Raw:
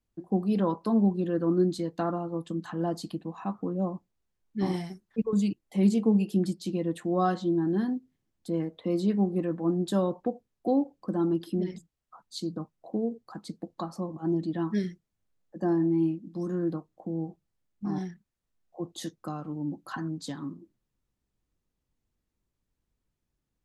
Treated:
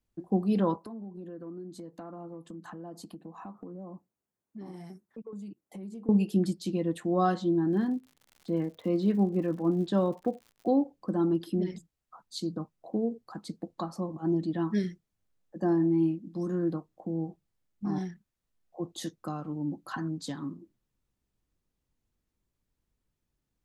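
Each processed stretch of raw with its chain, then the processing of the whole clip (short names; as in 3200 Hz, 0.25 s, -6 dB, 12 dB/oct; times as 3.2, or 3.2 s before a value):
0.76–6.09 HPF 150 Hz + bell 3500 Hz -9.5 dB 1.8 oct + compressor, threshold -40 dBFS
7.71–10.67 LPF 3900 Hz + crackle 120/s -45 dBFS
whole clip: dry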